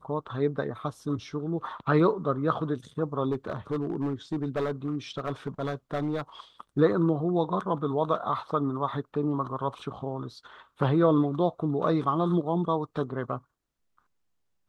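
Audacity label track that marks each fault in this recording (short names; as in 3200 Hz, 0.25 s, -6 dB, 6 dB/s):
3.310000	6.220000	clipped -24 dBFS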